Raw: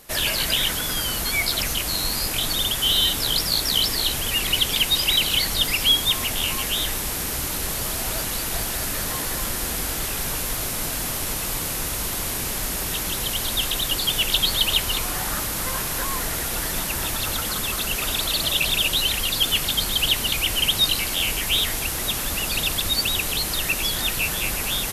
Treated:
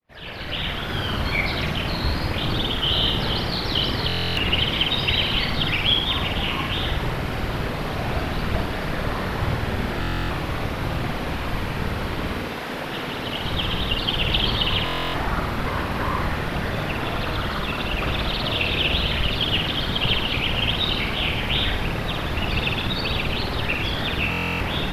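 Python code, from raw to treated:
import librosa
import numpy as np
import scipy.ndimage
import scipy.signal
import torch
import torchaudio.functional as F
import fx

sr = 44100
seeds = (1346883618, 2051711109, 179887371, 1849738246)

y = fx.fade_in_head(x, sr, length_s=1.03)
y = fx.highpass(y, sr, hz=fx.line((12.42, 280.0), (13.44, 100.0)), slope=12, at=(12.42, 13.44), fade=0.02)
y = fx.whisperise(y, sr, seeds[0])
y = fx.air_absorb(y, sr, metres=380.0)
y = fx.room_flutter(y, sr, wall_m=9.2, rt60_s=0.67)
y = fx.buffer_glitch(y, sr, at_s=(4.07, 10.0, 14.84, 24.3), block=1024, repeats=12)
y = F.gain(torch.from_numpy(y), 4.5).numpy()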